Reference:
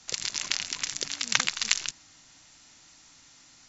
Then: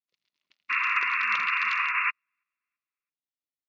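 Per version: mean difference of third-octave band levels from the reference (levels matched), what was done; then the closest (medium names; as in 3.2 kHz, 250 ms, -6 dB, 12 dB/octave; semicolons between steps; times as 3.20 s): 17.0 dB: painted sound noise, 0.69–2.11 s, 980–2800 Hz -13 dBFS; cabinet simulation 110–4000 Hz, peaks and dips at 120 Hz -8 dB, 830 Hz -6 dB, 1.6 kHz -6 dB; on a send: feedback delay 331 ms, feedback 47%, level -24 dB; on the sum: upward expansion 2.5:1, over -37 dBFS; trim -9 dB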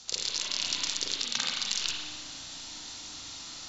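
8.0 dB: graphic EQ 125/2000/4000 Hz -5/-7/+8 dB; reverse; compression 6:1, threshold -33 dBFS, peak gain reduction 18 dB; reverse; peak limiter -20.5 dBFS, peak gain reduction 7.5 dB; spring tank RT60 1.3 s, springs 33/43 ms, chirp 25 ms, DRR -3 dB; trim +8.5 dB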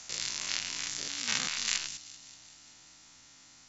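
3.0 dB: spectrogram pixelated in time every 100 ms; on a send: feedback echo behind a high-pass 193 ms, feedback 65%, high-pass 3.8 kHz, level -15 dB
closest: third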